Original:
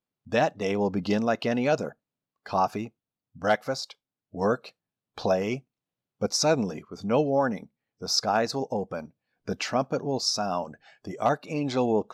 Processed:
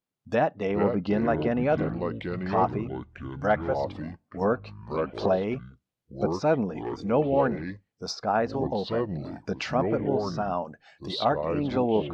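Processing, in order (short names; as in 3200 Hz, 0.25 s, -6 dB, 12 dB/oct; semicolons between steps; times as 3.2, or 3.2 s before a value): echoes that change speed 0.312 s, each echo -5 st, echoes 3, each echo -6 dB; treble ducked by the level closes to 1900 Hz, closed at -23 dBFS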